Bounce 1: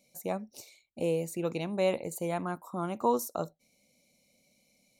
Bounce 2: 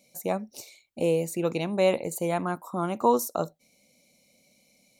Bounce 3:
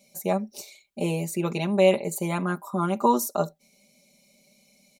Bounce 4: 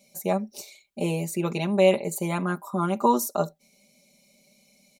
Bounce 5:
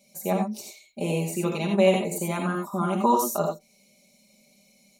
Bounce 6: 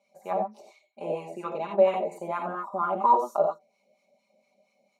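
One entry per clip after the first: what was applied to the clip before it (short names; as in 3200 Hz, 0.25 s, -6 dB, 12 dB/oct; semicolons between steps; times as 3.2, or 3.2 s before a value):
low shelf 82 Hz -6 dB; gain +5.5 dB
comb 5 ms, depth 88%
nothing audible
non-linear reverb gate 0.11 s rising, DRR 1.5 dB; gain -1.5 dB
added harmonics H 5 -35 dB, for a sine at -8 dBFS; wah 4.3 Hz 600–1200 Hz, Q 2.9; gain +5 dB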